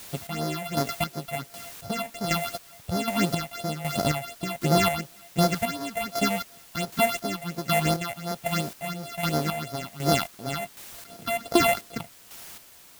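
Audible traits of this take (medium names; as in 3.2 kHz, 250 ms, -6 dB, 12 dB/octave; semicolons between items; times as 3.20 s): a buzz of ramps at a fixed pitch in blocks of 64 samples; phasing stages 6, 2.8 Hz, lowest notch 330–2700 Hz; a quantiser's noise floor 8-bit, dither triangular; chopped level 1.3 Hz, depth 60%, duty 35%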